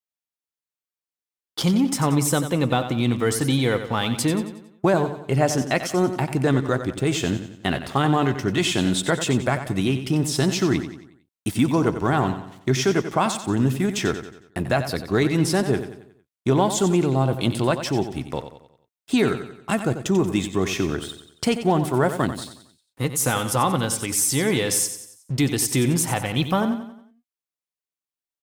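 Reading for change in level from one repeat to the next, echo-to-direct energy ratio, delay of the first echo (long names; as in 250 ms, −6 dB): −7.0 dB, −9.5 dB, 91 ms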